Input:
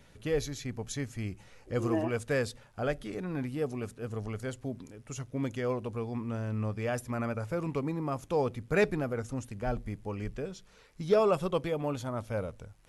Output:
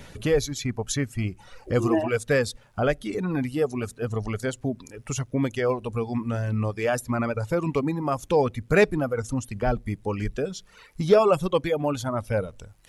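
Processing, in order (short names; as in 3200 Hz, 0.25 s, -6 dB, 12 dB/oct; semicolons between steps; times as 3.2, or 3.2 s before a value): reverb removal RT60 1.4 s; in parallel at +3 dB: compressor, threshold -43 dBFS, peak gain reduction 21.5 dB; on the sum: gain +6.5 dB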